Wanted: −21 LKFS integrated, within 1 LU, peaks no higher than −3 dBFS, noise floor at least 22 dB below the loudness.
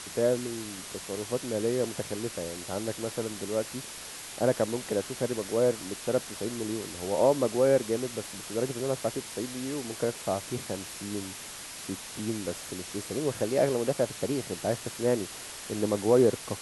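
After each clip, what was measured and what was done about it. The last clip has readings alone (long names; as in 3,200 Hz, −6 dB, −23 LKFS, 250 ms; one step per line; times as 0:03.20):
background noise floor −42 dBFS; target noise floor −53 dBFS; integrated loudness −30.5 LKFS; sample peak −10.5 dBFS; target loudness −21.0 LKFS
→ broadband denoise 11 dB, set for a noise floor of −42 dBFS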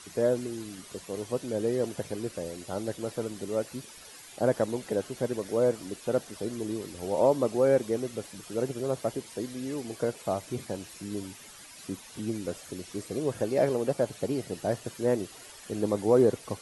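background noise floor −49 dBFS; target noise floor −53 dBFS
→ broadband denoise 6 dB, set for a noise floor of −49 dBFS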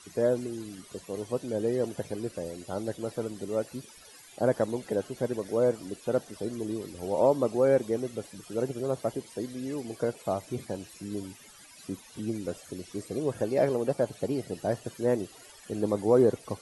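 background noise floor −52 dBFS; target noise floor −53 dBFS
→ broadband denoise 6 dB, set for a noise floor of −52 dBFS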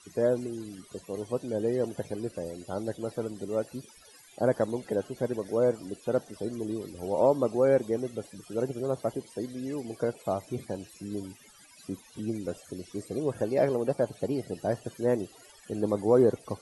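background noise floor −55 dBFS; integrated loudness −30.5 LKFS; sample peak −10.5 dBFS; target loudness −21.0 LKFS
→ level +9.5 dB
brickwall limiter −3 dBFS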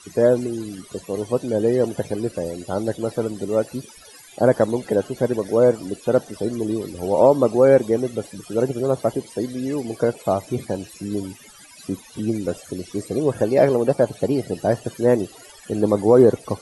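integrated loudness −21.0 LKFS; sample peak −3.0 dBFS; background noise floor −46 dBFS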